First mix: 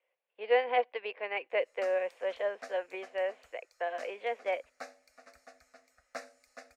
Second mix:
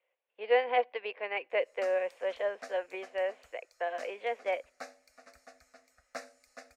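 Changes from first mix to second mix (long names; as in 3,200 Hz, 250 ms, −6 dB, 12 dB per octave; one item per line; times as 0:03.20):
speech: send +8.0 dB
background: add bass and treble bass +3 dB, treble +2 dB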